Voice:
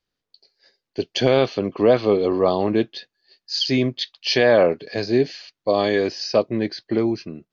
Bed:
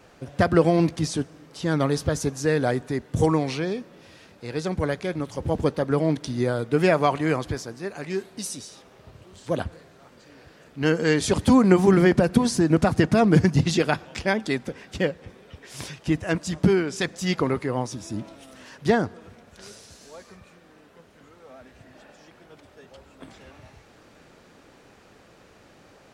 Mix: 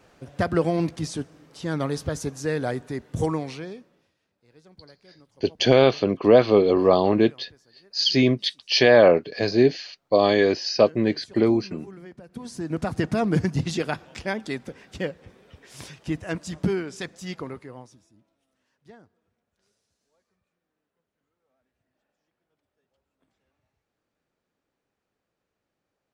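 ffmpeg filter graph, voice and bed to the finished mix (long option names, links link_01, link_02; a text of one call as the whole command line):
ffmpeg -i stem1.wav -i stem2.wav -filter_complex "[0:a]adelay=4450,volume=1dB[link_01];[1:a]volume=17dB,afade=type=out:start_time=3.22:duration=0.92:silence=0.0794328,afade=type=in:start_time=12.28:duration=0.77:silence=0.0891251,afade=type=out:start_time=16.63:duration=1.49:silence=0.0630957[link_02];[link_01][link_02]amix=inputs=2:normalize=0" out.wav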